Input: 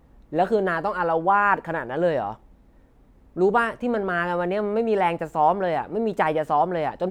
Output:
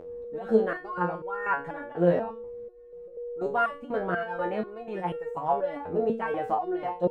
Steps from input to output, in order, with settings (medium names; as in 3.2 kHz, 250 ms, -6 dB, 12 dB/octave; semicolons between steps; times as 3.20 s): treble shelf 2.2 kHz -10 dB; whistle 480 Hz -26 dBFS; volume shaper 156 bpm, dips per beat 1, -17 dB, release 123 ms; resonator arpeggio 4.1 Hz 87–460 Hz; trim +8 dB